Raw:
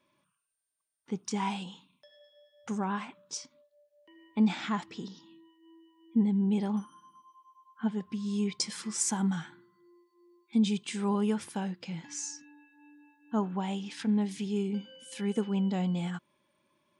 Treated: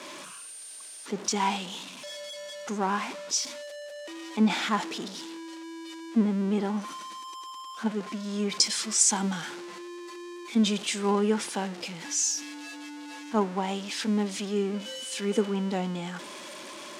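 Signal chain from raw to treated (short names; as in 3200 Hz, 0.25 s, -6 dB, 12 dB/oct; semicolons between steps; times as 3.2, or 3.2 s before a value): zero-crossing step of -36 dBFS; Chebyshev band-pass 310–7500 Hz, order 2; three-band expander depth 40%; gain +5 dB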